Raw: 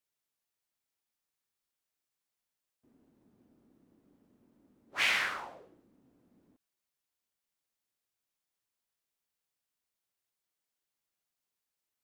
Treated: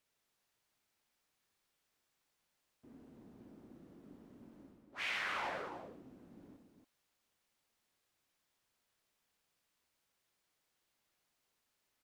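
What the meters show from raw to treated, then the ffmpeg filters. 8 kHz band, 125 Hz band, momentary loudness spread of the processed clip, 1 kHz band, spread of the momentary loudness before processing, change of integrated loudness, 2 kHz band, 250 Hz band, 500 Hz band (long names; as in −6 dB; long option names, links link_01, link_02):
−12.0 dB, can't be measured, 22 LU, −2.0 dB, 16 LU, −9.5 dB, −8.0 dB, +5.0 dB, +2.0 dB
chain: -af "highshelf=frequency=6600:gain=-8.5,areverse,acompressor=threshold=-48dB:ratio=5,areverse,aecho=1:1:61.22|279.9:0.398|0.447,volume=8.5dB"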